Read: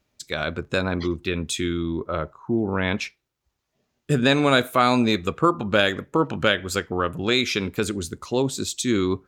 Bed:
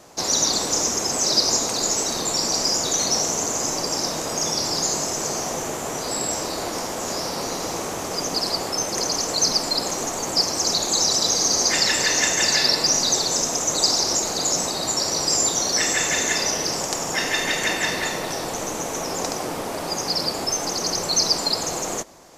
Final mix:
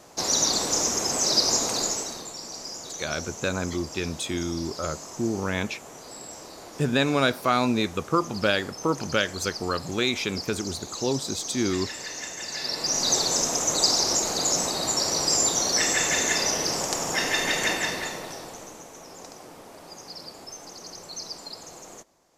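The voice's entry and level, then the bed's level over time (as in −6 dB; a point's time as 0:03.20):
2.70 s, −4.0 dB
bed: 0:01.79 −2.5 dB
0:02.34 −15.5 dB
0:12.47 −15.5 dB
0:13.12 −2 dB
0:17.68 −2 dB
0:18.90 −17 dB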